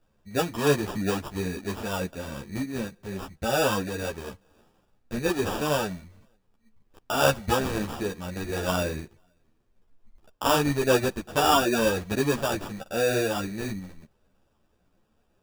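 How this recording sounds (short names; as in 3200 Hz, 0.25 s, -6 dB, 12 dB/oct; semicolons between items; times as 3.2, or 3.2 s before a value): aliases and images of a low sample rate 2100 Hz, jitter 0%; a shimmering, thickened sound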